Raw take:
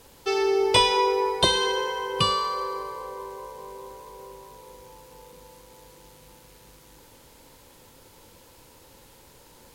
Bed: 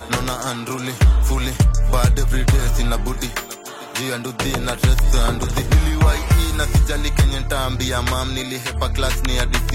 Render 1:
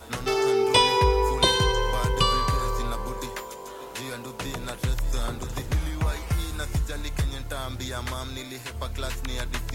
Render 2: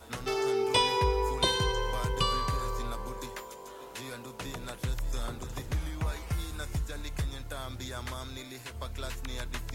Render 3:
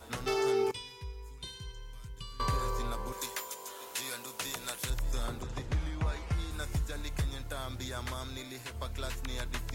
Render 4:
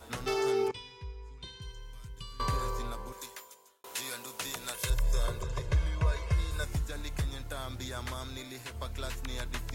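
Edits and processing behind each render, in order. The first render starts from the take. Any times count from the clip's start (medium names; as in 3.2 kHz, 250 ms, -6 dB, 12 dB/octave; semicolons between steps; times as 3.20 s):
add bed -11.5 dB
trim -6.5 dB
0.71–2.40 s: amplifier tone stack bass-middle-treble 6-0-2; 3.12–4.90 s: tilt EQ +3 dB/octave; 5.42–6.51 s: distance through air 61 m
0.68–1.62 s: distance through air 100 m; 2.62–3.84 s: fade out; 4.74–6.64 s: comb 1.9 ms, depth 88%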